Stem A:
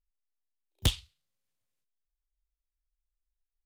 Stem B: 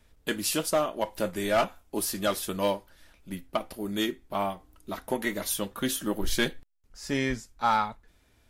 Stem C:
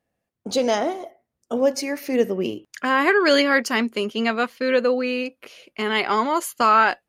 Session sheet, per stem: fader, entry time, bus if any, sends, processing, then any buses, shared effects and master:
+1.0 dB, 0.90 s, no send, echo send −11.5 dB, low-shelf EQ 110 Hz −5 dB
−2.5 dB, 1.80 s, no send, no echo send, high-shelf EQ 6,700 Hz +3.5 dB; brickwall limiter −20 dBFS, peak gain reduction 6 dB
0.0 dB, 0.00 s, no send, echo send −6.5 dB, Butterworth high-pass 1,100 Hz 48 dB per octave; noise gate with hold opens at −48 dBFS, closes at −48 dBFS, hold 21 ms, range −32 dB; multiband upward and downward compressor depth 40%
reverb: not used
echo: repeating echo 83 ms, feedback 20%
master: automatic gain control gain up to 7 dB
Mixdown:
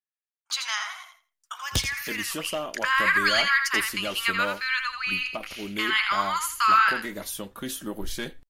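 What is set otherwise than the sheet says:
stem B: missing high-shelf EQ 6,700 Hz +3.5 dB
master: missing automatic gain control gain up to 7 dB

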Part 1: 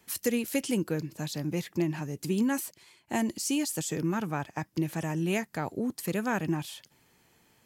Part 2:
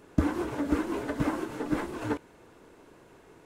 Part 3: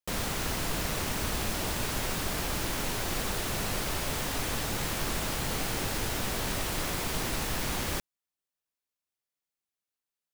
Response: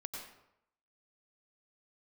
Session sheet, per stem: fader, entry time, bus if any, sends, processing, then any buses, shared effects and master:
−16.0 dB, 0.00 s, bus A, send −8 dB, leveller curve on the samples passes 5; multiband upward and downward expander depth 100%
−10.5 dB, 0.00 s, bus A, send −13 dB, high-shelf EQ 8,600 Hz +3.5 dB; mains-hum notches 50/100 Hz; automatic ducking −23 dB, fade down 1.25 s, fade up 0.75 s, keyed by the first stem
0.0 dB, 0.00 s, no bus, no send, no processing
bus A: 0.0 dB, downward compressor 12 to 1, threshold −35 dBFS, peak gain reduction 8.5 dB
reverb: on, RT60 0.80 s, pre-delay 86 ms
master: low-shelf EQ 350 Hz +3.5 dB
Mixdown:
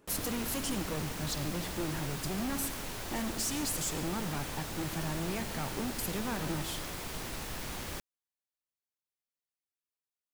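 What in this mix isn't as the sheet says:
stem 3 0.0 dB → −8.0 dB
master: missing low-shelf EQ 350 Hz +3.5 dB

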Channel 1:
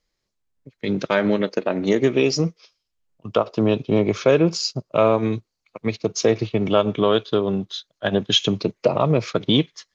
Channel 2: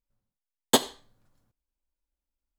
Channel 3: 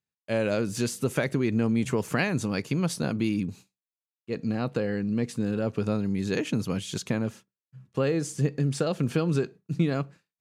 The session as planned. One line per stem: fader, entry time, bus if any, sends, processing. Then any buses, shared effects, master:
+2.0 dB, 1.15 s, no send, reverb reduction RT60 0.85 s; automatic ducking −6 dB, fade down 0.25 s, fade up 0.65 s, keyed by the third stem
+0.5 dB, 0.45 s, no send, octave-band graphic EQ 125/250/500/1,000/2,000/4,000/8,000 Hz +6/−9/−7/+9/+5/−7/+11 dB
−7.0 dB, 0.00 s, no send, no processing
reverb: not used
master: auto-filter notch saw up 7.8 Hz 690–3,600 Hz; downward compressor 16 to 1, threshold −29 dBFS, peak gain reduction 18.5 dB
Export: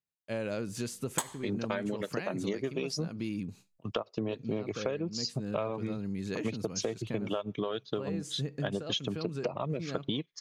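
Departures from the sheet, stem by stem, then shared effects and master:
stem 1: entry 1.15 s → 0.60 s
master: missing auto-filter notch saw up 7.8 Hz 690–3,600 Hz

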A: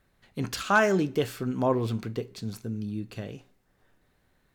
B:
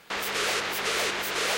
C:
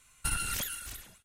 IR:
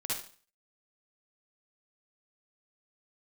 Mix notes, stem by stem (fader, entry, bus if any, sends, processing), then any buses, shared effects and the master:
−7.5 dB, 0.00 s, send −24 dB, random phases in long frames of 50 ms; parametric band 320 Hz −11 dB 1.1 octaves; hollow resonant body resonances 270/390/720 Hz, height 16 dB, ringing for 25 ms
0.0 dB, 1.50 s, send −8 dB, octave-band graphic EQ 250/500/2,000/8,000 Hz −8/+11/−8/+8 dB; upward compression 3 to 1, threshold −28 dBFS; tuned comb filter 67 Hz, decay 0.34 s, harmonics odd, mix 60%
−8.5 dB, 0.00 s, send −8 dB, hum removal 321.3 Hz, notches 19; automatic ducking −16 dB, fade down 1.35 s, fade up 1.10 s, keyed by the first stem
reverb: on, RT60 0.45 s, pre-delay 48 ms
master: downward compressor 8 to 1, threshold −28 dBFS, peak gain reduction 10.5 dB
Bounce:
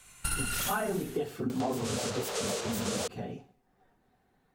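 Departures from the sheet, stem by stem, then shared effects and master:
stem B: send off
stem C −8.5 dB → +2.5 dB
reverb return +6.5 dB

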